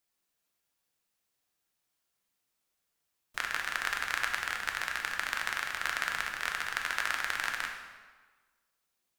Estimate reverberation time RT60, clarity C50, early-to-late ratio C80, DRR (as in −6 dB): 1.4 s, 5.0 dB, 6.5 dB, 1.5 dB